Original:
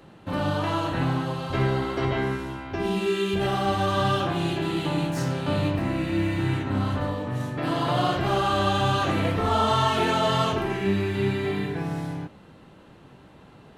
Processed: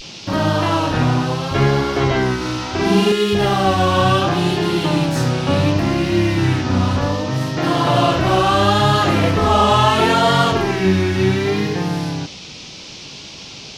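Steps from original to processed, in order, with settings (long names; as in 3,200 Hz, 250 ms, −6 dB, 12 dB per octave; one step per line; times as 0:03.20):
pitch vibrato 0.7 Hz 95 cents
noise in a band 2,300–5,900 Hz −45 dBFS
0:02.37–0:03.12: flutter between parallel walls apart 7.2 metres, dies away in 0.9 s
level +8.5 dB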